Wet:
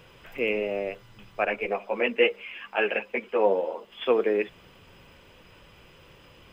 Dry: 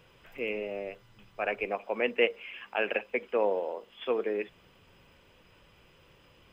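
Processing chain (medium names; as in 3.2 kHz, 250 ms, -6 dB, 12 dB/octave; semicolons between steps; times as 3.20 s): 1.45–3.92 s: three-phase chorus; trim +7 dB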